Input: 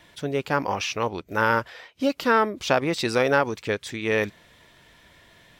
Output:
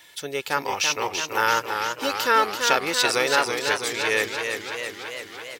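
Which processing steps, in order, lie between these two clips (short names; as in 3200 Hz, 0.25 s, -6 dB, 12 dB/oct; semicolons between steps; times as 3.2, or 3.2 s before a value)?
tilt +3.5 dB/oct; comb 2.3 ms, depth 34%; warbling echo 0.333 s, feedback 69%, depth 90 cents, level -6 dB; gain -1 dB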